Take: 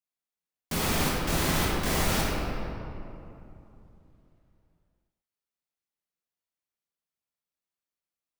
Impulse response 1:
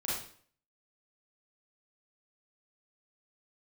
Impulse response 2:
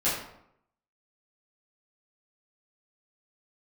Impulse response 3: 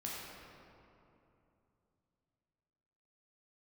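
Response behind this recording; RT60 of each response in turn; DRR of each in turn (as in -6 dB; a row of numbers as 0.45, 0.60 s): 3; 0.50, 0.75, 2.9 s; -8.0, -12.0, -5.5 dB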